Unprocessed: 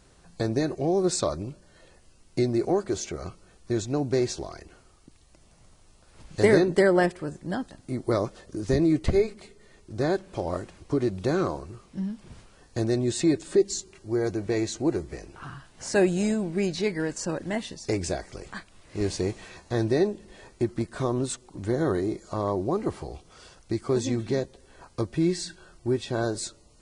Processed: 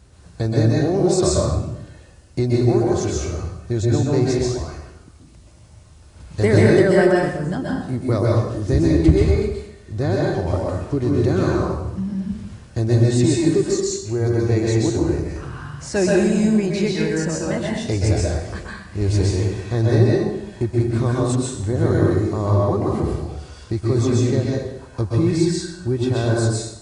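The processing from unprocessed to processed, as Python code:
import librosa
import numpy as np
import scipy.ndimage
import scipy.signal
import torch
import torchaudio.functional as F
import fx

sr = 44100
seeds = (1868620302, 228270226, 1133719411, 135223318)

p1 = scipy.signal.sosfilt(scipy.signal.butter(2, 49.0, 'highpass', fs=sr, output='sos'), x)
p2 = fx.peak_eq(p1, sr, hz=71.0, db=15.0, octaves=1.7)
p3 = 10.0 ** (-18.0 / 20.0) * np.tanh(p2 / 10.0 ** (-18.0 / 20.0))
p4 = p2 + (p3 * librosa.db_to_amplitude(-9.0))
p5 = fx.rev_plate(p4, sr, seeds[0], rt60_s=0.82, hf_ratio=0.85, predelay_ms=115, drr_db=-3.5)
y = p5 * librosa.db_to_amplitude(-1.5)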